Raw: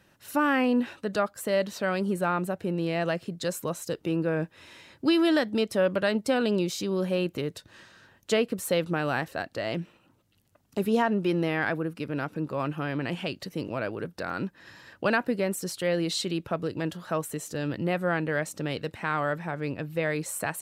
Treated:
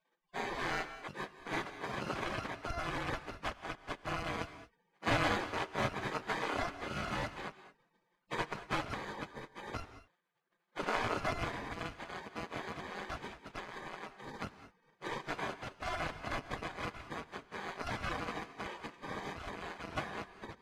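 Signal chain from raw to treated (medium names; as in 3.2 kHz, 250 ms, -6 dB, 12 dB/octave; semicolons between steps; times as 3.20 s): bit-reversed sample order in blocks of 256 samples; spectral gate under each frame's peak -30 dB weak; low-pass 1.6 kHz 12 dB/octave; bass shelf 200 Hz +4 dB; gated-style reverb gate 240 ms rising, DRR 12 dB; trim +18 dB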